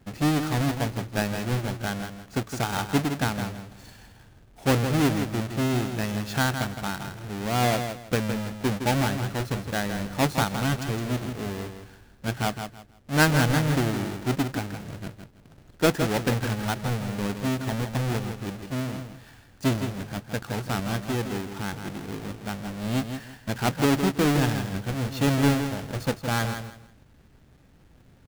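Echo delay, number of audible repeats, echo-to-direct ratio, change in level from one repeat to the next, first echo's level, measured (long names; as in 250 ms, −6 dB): 163 ms, 3, −7.5 dB, −12.5 dB, −8.0 dB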